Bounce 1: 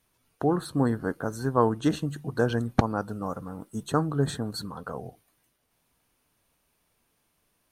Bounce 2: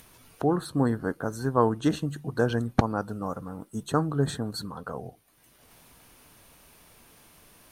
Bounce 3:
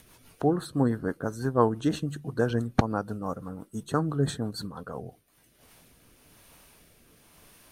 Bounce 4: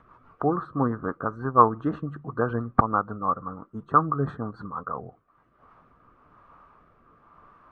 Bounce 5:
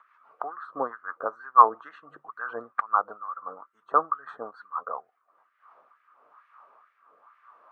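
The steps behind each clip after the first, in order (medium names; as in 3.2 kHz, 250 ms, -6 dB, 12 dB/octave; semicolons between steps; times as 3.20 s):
upward compressor, threshold -40 dBFS
rotary cabinet horn 6 Hz, later 1 Hz, at 4.94 s; trim +1 dB
resonant low-pass 1.2 kHz, resonance Q 8.5; trim -1.5 dB
LFO high-pass sine 2.2 Hz 520–2000 Hz; trim -4 dB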